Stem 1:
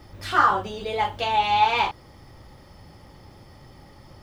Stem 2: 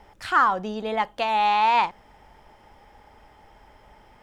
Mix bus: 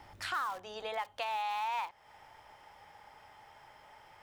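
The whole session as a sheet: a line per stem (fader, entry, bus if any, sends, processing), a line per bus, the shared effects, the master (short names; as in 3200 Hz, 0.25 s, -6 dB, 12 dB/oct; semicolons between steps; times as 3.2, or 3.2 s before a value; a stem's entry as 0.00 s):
-12.5 dB, 0.00 s, no send, wrapped overs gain 20 dB; auto duck -11 dB, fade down 1.00 s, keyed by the second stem
-1.0 dB, 0.00 s, polarity flipped, no send, HPF 690 Hz 12 dB/oct; soft clip -10.5 dBFS, distortion -22 dB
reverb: off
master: compressor 3:1, threshold -37 dBFS, peak gain reduction 14 dB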